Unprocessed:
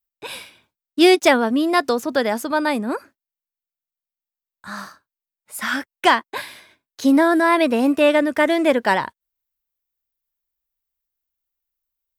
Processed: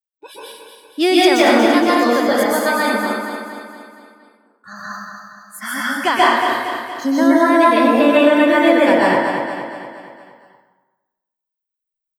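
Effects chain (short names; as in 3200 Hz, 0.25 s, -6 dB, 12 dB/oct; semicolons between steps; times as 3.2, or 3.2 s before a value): spectral noise reduction 20 dB; 2.29–4.73 tilt +2 dB/oct; feedback echo 0.233 s, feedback 53%, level -7 dB; reverb RT60 1.1 s, pre-delay 0.115 s, DRR -6.5 dB; maximiser -2.5 dB; gain -1 dB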